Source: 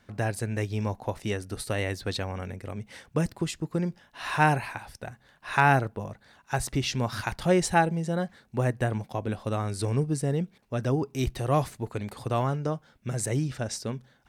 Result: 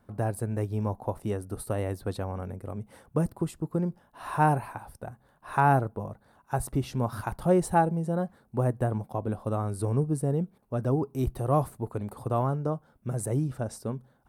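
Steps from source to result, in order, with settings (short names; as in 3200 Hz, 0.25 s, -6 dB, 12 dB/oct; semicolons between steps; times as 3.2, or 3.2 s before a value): band shelf 3500 Hz -14 dB 2.4 oct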